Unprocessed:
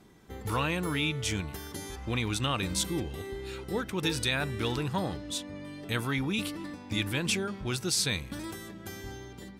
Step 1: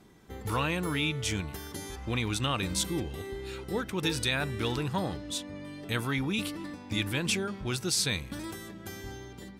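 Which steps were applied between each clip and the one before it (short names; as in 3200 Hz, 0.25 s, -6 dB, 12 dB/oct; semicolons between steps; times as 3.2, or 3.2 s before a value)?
nothing audible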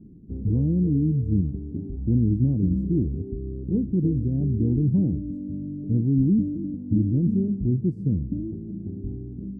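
inverse Chebyshev low-pass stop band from 1200 Hz, stop band 50 dB; resonant low shelf 350 Hz +11 dB, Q 1.5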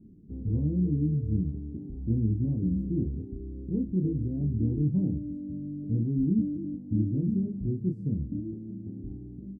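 doubler 27 ms -4 dB; gain -7 dB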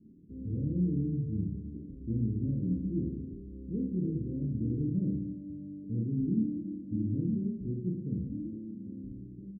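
elliptic low-pass 560 Hz, stop band 40 dB; low shelf 89 Hz -9 dB; reverse bouncing-ball echo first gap 50 ms, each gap 1.15×, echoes 5; gain -4 dB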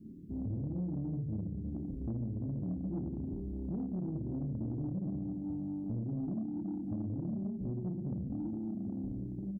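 notch 450 Hz, Q 12; compressor 6:1, threshold -39 dBFS, peak gain reduction 14.5 dB; soft clip -37 dBFS, distortion -17 dB; gain +7 dB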